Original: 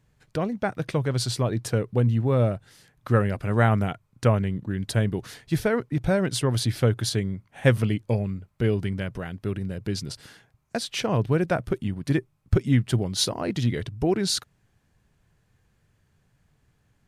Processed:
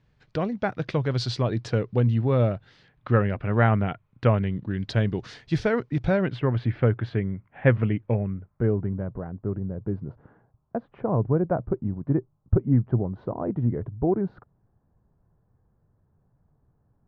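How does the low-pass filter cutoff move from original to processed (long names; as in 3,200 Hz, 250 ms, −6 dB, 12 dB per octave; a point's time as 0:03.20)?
low-pass filter 24 dB per octave
0:02.35 5,100 Hz
0:03.41 3,000 Hz
0:03.91 3,000 Hz
0:05.22 5,600 Hz
0:06.01 5,600 Hz
0:06.41 2,300 Hz
0:08.06 2,300 Hz
0:08.98 1,100 Hz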